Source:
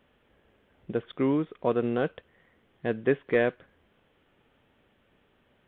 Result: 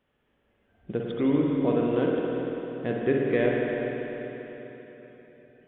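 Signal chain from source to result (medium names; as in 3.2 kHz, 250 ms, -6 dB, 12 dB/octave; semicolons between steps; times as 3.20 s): dynamic bell 1.2 kHz, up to -6 dB, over -41 dBFS, Q 0.82; spring tank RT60 3.9 s, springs 49/56 ms, chirp 70 ms, DRR -2.5 dB; spectral noise reduction 9 dB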